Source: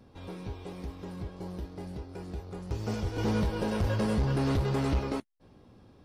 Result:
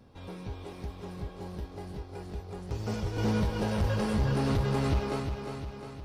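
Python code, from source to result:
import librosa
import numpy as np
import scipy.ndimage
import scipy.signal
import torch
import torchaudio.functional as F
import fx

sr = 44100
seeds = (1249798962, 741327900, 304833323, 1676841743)

p1 = fx.peak_eq(x, sr, hz=320.0, db=-2.5, octaves=0.77)
y = p1 + fx.echo_feedback(p1, sr, ms=355, feedback_pct=57, wet_db=-7.0, dry=0)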